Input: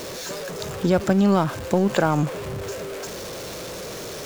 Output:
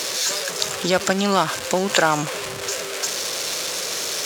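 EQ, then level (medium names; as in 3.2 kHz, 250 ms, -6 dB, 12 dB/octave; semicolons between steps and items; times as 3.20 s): distance through air 51 m; tilt EQ +4.5 dB/octave; +5.0 dB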